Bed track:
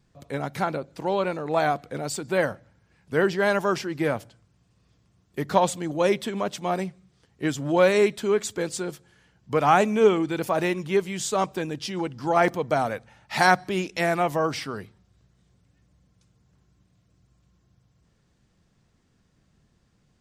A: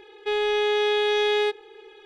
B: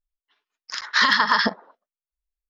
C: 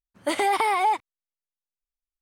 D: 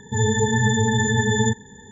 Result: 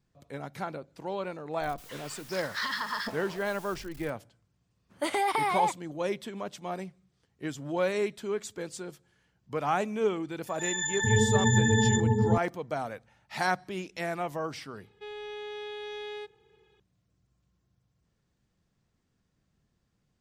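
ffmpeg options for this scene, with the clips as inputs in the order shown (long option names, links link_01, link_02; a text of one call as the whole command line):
ffmpeg -i bed.wav -i cue0.wav -i cue1.wav -i cue2.wav -i cue3.wav -filter_complex "[0:a]volume=-9.5dB[link_01];[2:a]aeval=exprs='val(0)+0.5*0.0631*sgn(val(0))':channel_layout=same[link_02];[4:a]acrossover=split=1100[link_03][link_04];[link_03]adelay=450[link_05];[link_05][link_04]amix=inputs=2:normalize=0[link_06];[link_02]atrim=end=2.49,asetpts=PTS-STARTPTS,volume=-16dB,afade=type=in:duration=0.004:curve=hsin,afade=type=out:start_time=2.486:duration=0.004:curve=hsin,adelay=1610[link_07];[3:a]atrim=end=2.21,asetpts=PTS-STARTPTS,volume=-5dB,afade=type=in:duration=0.004:curve=hsin,afade=type=out:start_time=2.206:duration=0.004:curve=hsin,adelay=4750[link_08];[link_06]atrim=end=1.91,asetpts=PTS-STARTPTS,volume=-3.5dB,afade=type=in:duration=0.004:curve=hsin,afade=type=out:start_time=1.906:duration=0.004:curve=hsin,adelay=10470[link_09];[1:a]atrim=end=2.05,asetpts=PTS-STARTPTS,volume=-17dB,afade=type=in:duration=0.004:curve=hsin,afade=type=out:start_time=2.046:duration=0.004:curve=hsin,adelay=14750[link_10];[link_01][link_07][link_08][link_09][link_10]amix=inputs=5:normalize=0" out.wav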